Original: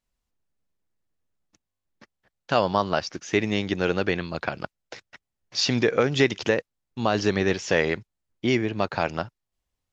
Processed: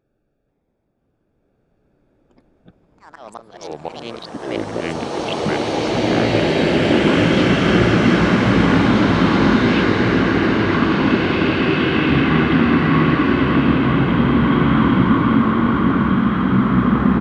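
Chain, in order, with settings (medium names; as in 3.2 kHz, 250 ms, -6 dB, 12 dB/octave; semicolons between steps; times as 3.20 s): local Wiener filter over 25 samples; high-pass 95 Hz 6 dB/octave; tone controls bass -9 dB, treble -6 dB; reverse; compression 8:1, threshold -35 dBFS, peak gain reduction 18.5 dB; reverse; slow attack 419 ms; ever faster or slower copies 280 ms, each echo +6 st, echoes 3, each echo -6 dB; on a send: delay 914 ms -7 dB; on the sum: speed mistake 78 rpm record played at 45 rpm; loudness maximiser +34.5 dB; swelling reverb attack 2320 ms, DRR -11.5 dB; trim -9.5 dB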